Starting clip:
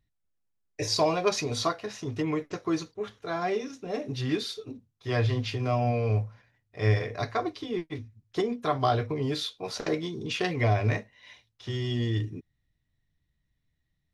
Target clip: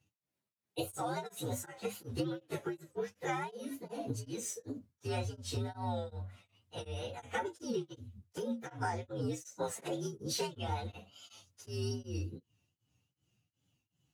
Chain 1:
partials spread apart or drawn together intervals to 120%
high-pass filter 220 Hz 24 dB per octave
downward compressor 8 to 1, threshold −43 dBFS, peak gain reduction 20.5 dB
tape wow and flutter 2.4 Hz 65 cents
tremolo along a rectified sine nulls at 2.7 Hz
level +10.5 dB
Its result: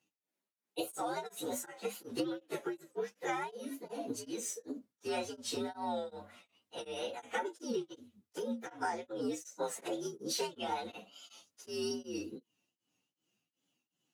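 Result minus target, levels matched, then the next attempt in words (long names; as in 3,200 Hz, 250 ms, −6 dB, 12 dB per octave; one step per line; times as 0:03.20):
125 Hz band −16.5 dB
partials spread apart or drawn together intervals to 120%
high-pass filter 100 Hz 24 dB per octave
downward compressor 8 to 1, threshold −43 dBFS, peak gain reduction 21 dB
tape wow and flutter 2.4 Hz 65 cents
tremolo along a rectified sine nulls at 2.7 Hz
level +10.5 dB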